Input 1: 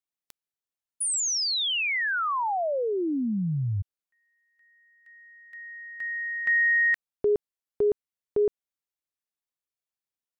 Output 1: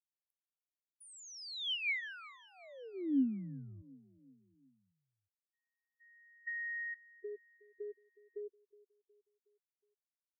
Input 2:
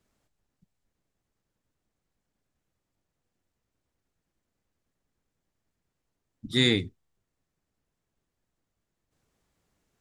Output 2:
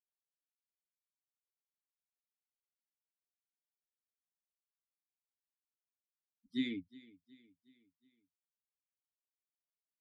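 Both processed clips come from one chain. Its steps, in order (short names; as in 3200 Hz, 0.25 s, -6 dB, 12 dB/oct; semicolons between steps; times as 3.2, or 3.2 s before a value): per-bin expansion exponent 3; compressor, threshold -28 dBFS; vowel filter i; feedback echo 0.366 s, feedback 50%, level -21 dB; gain +4 dB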